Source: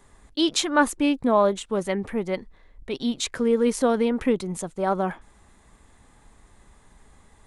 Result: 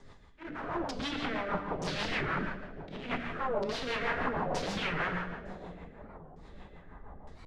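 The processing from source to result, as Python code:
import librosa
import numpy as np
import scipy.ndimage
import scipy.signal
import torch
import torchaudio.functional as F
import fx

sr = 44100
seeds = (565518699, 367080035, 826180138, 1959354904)

p1 = fx.over_compress(x, sr, threshold_db=-25.0, ratio=-0.5)
p2 = fx.hum_notches(p1, sr, base_hz=60, count=7)
p3 = (np.mod(10.0 ** (27.5 / 20.0) * p2 + 1.0, 2.0) - 1.0) / 10.0 ** (27.5 / 20.0)
p4 = fx.auto_swell(p3, sr, attack_ms=218.0)
p5 = fx.filter_lfo_lowpass(p4, sr, shape='saw_down', hz=1.1, low_hz=600.0, high_hz=5600.0, q=2.8)
p6 = fx.high_shelf(p5, sr, hz=2800.0, db=-10.0)
p7 = p6 + fx.echo_split(p6, sr, split_hz=780.0, low_ms=548, high_ms=111, feedback_pct=52, wet_db=-10.0, dry=0)
p8 = fx.rev_gated(p7, sr, seeds[0], gate_ms=200, shape='flat', drr_db=2.0)
p9 = fx.rotary(p8, sr, hz=6.3)
y = fx.record_warp(p9, sr, rpm=45.0, depth_cents=250.0)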